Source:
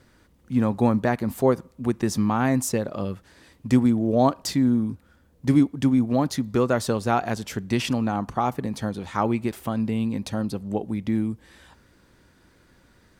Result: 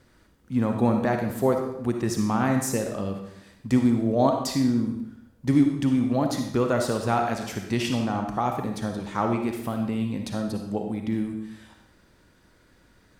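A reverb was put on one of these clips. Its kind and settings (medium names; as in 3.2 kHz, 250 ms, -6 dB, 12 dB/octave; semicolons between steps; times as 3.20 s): algorithmic reverb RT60 0.77 s, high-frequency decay 0.95×, pre-delay 15 ms, DRR 3.5 dB; trim -2.5 dB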